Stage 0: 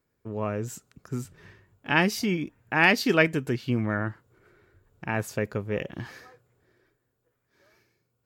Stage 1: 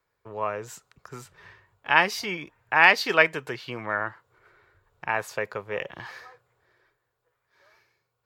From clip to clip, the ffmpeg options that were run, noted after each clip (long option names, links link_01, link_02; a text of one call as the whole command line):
ffmpeg -i in.wav -filter_complex "[0:a]equalizer=frequency=250:width_type=o:width=1:gain=-11,equalizer=frequency=500:width_type=o:width=1:gain=4,equalizer=frequency=1000:width_type=o:width=1:gain=10,equalizer=frequency=2000:width_type=o:width=1:gain=5,equalizer=frequency=4000:width_type=o:width=1:gain=6,acrossover=split=160|1500|2900[link_01][link_02][link_03][link_04];[link_01]acompressor=threshold=-47dB:ratio=6[link_05];[link_05][link_02][link_03][link_04]amix=inputs=4:normalize=0,volume=-4dB" out.wav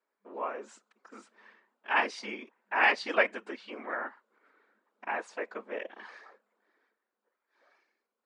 ffmpeg -i in.wav -af "afftfilt=real='hypot(re,im)*cos(2*PI*random(0))':imag='hypot(re,im)*sin(2*PI*random(1))':win_size=512:overlap=0.75,afftfilt=real='re*between(b*sr/4096,200,10000)':imag='im*between(b*sr/4096,200,10000)':win_size=4096:overlap=0.75,highshelf=frequency=3700:gain=-8.5" out.wav